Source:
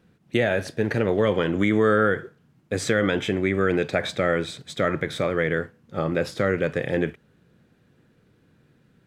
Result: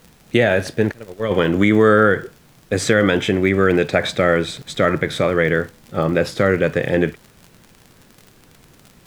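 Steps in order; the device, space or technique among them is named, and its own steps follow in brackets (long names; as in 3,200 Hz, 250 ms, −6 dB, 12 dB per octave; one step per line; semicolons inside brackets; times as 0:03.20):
0:00.91–0:01.31: noise gate −17 dBFS, range −27 dB
vinyl LP (surface crackle 58 per second −37 dBFS; pink noise bed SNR 34 dB)
level +6.5 dB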